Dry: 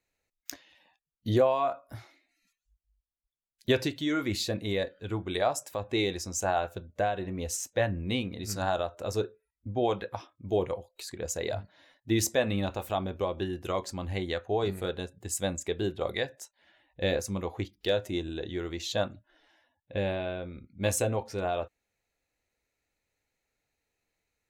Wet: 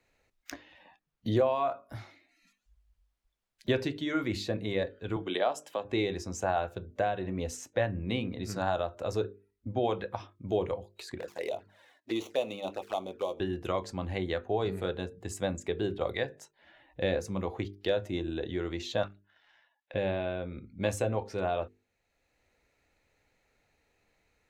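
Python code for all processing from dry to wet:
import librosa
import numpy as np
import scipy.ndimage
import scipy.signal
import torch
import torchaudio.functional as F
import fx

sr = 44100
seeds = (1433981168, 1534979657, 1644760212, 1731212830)

y = fx.chain(x, sr, fx.highpass(hz=210.0, slope=24),
    fx.peak_eq(hz=3100.0, db=13.0, octaves=0.22), at=(5.16, 5.85))
y = fx.chain(y, sr, fx.dead_time(dead_ms=0.06),
    fx.highpass(hz=390.0, slope=12),
    fx.env_flanger(rest_ms=3.6, full_db=-30.5), at=(11.18, 13.4))
y = fx.chain(y, sr, fx.highpass(hz=1100.0, slope=12),
    fx.leveller(passes=1),
    fx.air_absorb(metres=72.0), at=(19.03, 19.94))
y = fx.lowpass(y, sr, hz=2800.0, slope=6)
y = fx.hum_notches(y, sr, base_hz=50, count=9)
y = fx.band_squash(y, sr, depth_pct=40)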